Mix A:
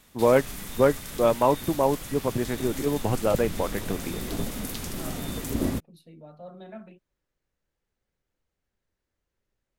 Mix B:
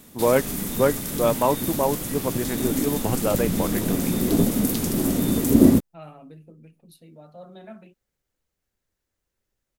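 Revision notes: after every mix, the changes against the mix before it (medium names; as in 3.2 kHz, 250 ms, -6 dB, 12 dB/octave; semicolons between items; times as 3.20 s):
second voice: entry +0.95 s; background: add peaking EQ 260 Hz +14.5 dB 2.7 oct; master: add treble shelf 6.2 kHz +12 dB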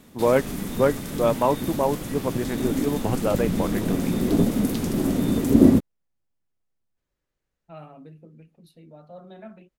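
second voice: entry +1.75 s; master: add treble shelf 6.2 kHz -12 dB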